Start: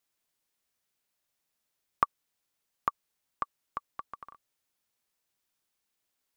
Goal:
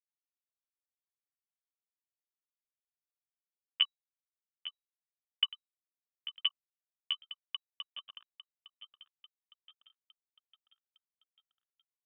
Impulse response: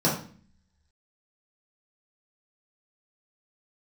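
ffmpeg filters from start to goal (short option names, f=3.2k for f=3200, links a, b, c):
-filter_complex "[0:a]highpass=f=400:w=0.5412,highpass=f=400:w=1.3066,aemphasis=mode=reproduction:type=75fm,acrossover=split=740[a][b];[a]acompressor=threshold=-52dB:ratio=4[c];[c][b]amix=inputs=2:normalize=0,alimiter=limit=-15.5dB:level=0:latency=1:release=171,aeval=exprs='sgn(val(0))*max(abs(val(0))-0.00355,0)':c=same,asplit=6[d][e][f][g][h][i];[e]adelay=450,afreqshift=-47,volume=-14dB[j];[f]adelay=900,afreqshift=-94,volume=-19.8dB[k];[g]adelay=1350,afreqshift=-141,volume=-25.7dB[l];[h]adelay=1800,afreqshift=-188,volume=-31.5dB[m];[i]adelay=2250,afreqshift=-235,volume=-37.4dB[n];[d][j][k][l][m][n]amix=inputs=6:normalize=0,asetrate=35280,aresample=44100,crystalizer=i=6.5:c=0,atempo=0.66,lowpass=f=3.3k:t=q:w=0.5098,lowpass=f=3.3k:t=q:w=0.6013,lowpass=f=3.3k:t=q:w=0.9,lowpass=f=3.3k:t=q:w=2.563,afreqshift=-3900"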